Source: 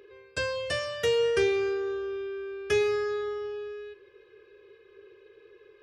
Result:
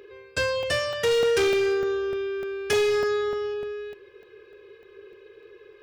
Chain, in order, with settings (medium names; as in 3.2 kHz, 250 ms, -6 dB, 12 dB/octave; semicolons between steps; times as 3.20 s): 1.11–3.54 s: treble shelf 2.8 kHz +5.5 dB; hard clipper -24.5 dBFS, distortion -12 dB; crackling interface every 0.30 s, samples 64, zero, from 0.63 s; trim +5.5 dB